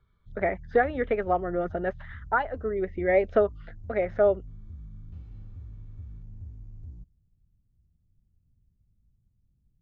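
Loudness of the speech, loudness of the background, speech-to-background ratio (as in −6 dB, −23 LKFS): −27.0 LKFS, −45.5 LKFS, 18.5 dB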